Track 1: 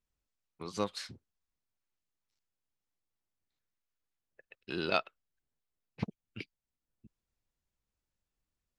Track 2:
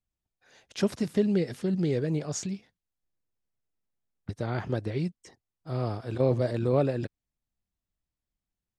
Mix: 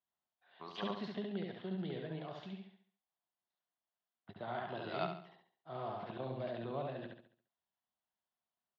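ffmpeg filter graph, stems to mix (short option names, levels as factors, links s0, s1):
-filter_complex "[0:a]volume=0.596,asplit=2[s0][s1];[s1]volume=0.501[s2];[1:a]highshelf=f=4600:t=q:w=3:g=-12,acrossover=split=250|3000[s3][s4][s5];[s4]acompressor=threshold=0.0355:ratio=6[s6];[s3][s6][s5]amix=inputs=3:normalize=0,volume=0.335,asplit=3[s7][s8][s9];[s8]volume=0.708[s10];[s9]apad=whole_len=387320[s11];[s0][s11]sidechaincompress=threshold=0.00447:ratio=8:attack=11:release=442[s12];[s2][s10]amix=inputs=2:normalize=0,aecho=0:1:69|138|207|276|345|414:1|0.4|0.16|0.064|0.0256|0.0102[s13];[s12][s7][s13]amix=inputs=3:normalize=0,highpass=240,equalizer=f=290:t=q:w=4:g=-9,equalizer=f=480:t=q:w=4:g=-8,equalizer=f=700:t=q:w=4:g=8,equalizer=f=1000:t=q:w=4:g=5,equalizer=f=2400:t=q:w=4:g=-8,lowpass=f=4000:w=0.5412,lowpass=f=4000:w=1.3066"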